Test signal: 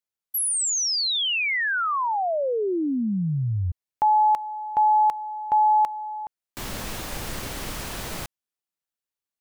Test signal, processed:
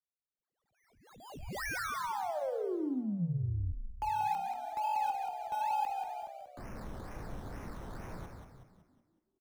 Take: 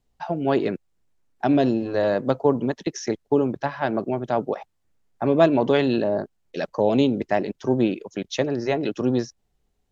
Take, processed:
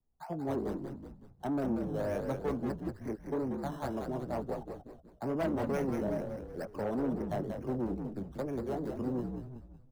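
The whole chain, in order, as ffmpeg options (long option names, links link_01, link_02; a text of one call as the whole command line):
ffmpeg -i in.wav -filter_complex "[0:a]lowpass=frequency=1900:width=0.5412,lowpass=frequency=1900:width=1.3066,acrossover=split=220|350|1400[link_01][link_02][link_03][link_04];[link_03]flanger=delay=16:depth=7.1:speed=2.6[link_05];[link_04]acrusher=samples=15:mix=1:aa=0.000001:lfo=1:lforange=9:lforate=2.2[link_06];[link_01][link_02][link_05][link_06]amix=inputs=4:normalize=0,asoftclip=type=tanh:threshold=-19dB,asplit=7[link_07][link_08][link_09][link_10][link_11][link_12][link_13];[link_08]adelay=186,afreqshift=-66,volume=-5.5dB[link_14];[link_09]adelay=372,afreqshift=-132,volume=-12.2dB[link_15];[link_10]adelay=558,afreqshift=-198,volume=-19dB[link_16];[link_11]adelay=744,afreqshift=-264,volume=-25.7dB[link_17];[link_12]adelay=930,afreqshift=-330,volume=-32.5dB[link_18];[link_13]adelay=1116,afreqshift=-396,volume=-39.2dB[link_19];[link_07][link_14][link_15][link_16][link_17][link_18][link_19]amix=inputs=7:normalize=0,volume=-9dB" out.wav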